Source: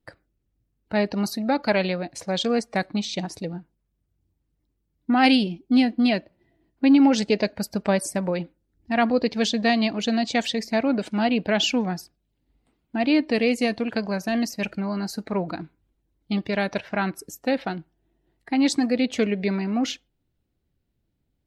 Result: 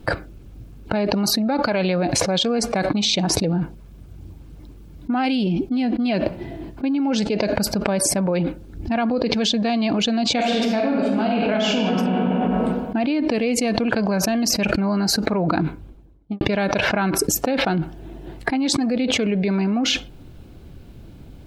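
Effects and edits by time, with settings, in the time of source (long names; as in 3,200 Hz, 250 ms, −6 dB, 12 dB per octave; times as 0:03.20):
0:10.34–0:11.92: thrown reverb, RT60 1.4 s, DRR −2.5 dB
0:15.51–0:16.41: fade out and dull
whole clip: high-shelf EQ 4,500 Hz −9 dB; notch filter 1,900 Hz, Q 7.9; envelope flattener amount 100%; level −7 dB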